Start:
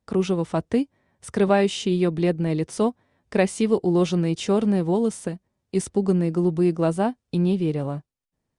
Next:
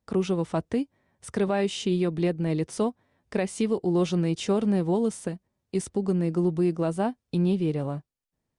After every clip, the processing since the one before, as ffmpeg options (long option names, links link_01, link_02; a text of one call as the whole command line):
ffmpeg -i in.wav -af "alimiter=limit=-13.5dB:level=0:latency=1:release=194,volume=-2.5dB" out.wav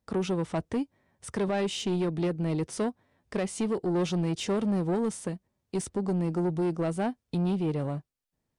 ffmpeg -i in.wav -af "asoftclip=type=tanh:threshold=-22.5dB" out.wav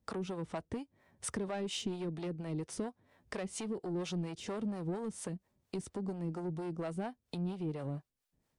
ffmpeg -i in.wav -filter_complex "[0:a]acompressor=threshold=-39dB:ratio=5,acrossover=split=460[link_01][link_02];[link_01]aeval=exprs='val(0)*(1-0.7/2+0.7/2*cos(2*PI*4.3*n/s))':channel_layout=same[link_03];[link_02]aeval=exprs='val(0)*(1-0.7/2-0.7/2*cos(2*PI*4.3*n/s))':channel_layout=same[link_04];[link_03][link_04]amix=inputs=2:normalize=0,volume=5dB" out.wav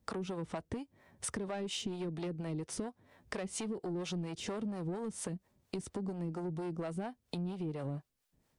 ffmpeg -i in.wav -af "acompressor=threshold=-41dB:ratio=3,volume=4.5dB" out.wav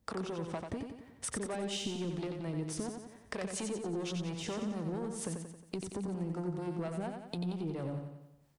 ffmpeg -i in.wav -af "aecho=1:1:90|180|270|360|450|540|630:0.531|0.276|0.144|0.0746|0.0388|0.0202|0.0105" out.wav